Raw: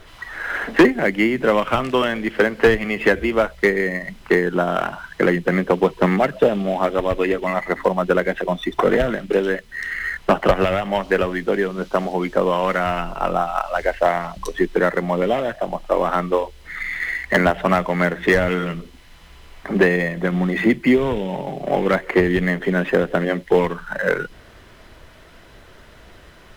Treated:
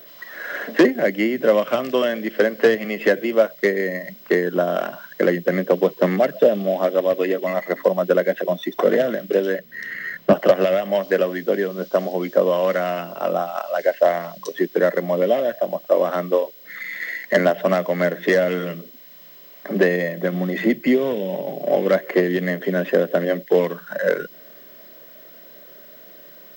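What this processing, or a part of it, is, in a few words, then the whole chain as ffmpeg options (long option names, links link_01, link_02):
old television with a line whistle: -filter_complex "[0:a]highpass=frequency=170:width=0.5412,highpass=frequency=170:width=1.3066,equalizer=frequency=580:width_type=q:width=4:gain=8,equalizer=frequency=880:width_type=q:width=4:gain=-9,equalizer=frequency=1300:width_type=q:width=4:gain=-5,equalizer=frequency=2400:width_type=q:width=4:gain=-5,equalizer=frequency=5200:width_type=q:width=4:gain=5,lowpass=frequency=8600:width=0.5412,lowpass=frequency=8600:width=1.3066,aeval=exprs='val(0)+0.01*sin(2*PI*15734*n/s)':channel_layout=same,asettb=1/sr,asplit=3[link_01][link_02][link_03];[link_01]atrim=end=9.584[link_04];[link_02]atrim=start=9.58:end=10.33,asetpts=PTS-STARTPTS,afade=type=in:duration=0.004:curve=qsin,afade=type=out:start_time=0.746:duration=0.004:curve=qsin,bass=frequency=250:gain=12,treble=frequency=4000:gain=-6[link_05];[link_03]atrim=start=10.326[link_06];[link_04][link_05]acrossfade=duration=0.004:curve1=hsin:curve2=qsin[link_07];[link_07][link_06]acrossfade=duration=0.004:curve1=qsin:curve2=hsin,volume=-2dB"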